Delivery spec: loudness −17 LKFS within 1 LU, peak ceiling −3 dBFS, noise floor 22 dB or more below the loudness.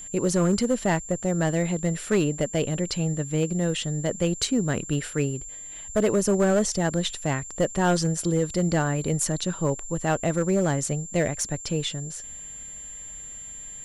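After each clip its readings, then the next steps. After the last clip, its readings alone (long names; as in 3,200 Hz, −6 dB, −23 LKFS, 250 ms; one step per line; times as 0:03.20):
share of clipped samples 1.1%; peaks flattened at −15.5 dBFS; interfering tone 7,300 Hz; level of the tone −37 dBFS; integrated loudness −25.5 LKFS; sample peak −15.5 dBFS; target loudness −17.0 LKFS
→ clipped peaks rebuilt −15.5 dBFS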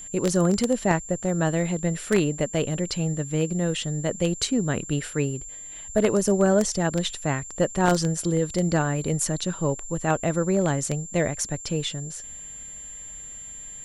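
share of clipped samples 0.0%; interfering tone 7,300 Hz; level of the tone −37 dBFS
→ notch filter 7,300 Hz, Q 30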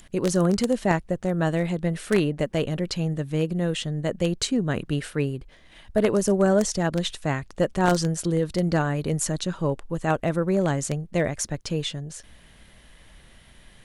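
interfering tone none found; integrated loudness −25.0 LKFS; sample peak −6.5 dBFS; target loudness −17.0 LKFS
→ level +8 dB
brickwall limiter −3 dBFS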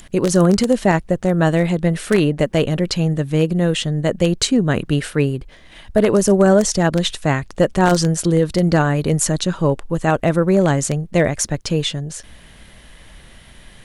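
integrated loudness −17.5 LKFS; sample peak −3.0 dBFS; background noise floor −44 dBFS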